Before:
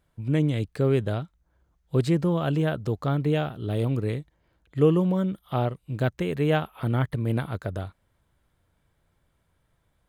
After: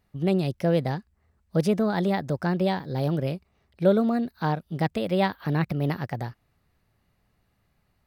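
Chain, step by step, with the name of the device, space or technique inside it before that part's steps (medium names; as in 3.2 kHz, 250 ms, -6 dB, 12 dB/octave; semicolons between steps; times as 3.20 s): nightcore (tape speed +25%)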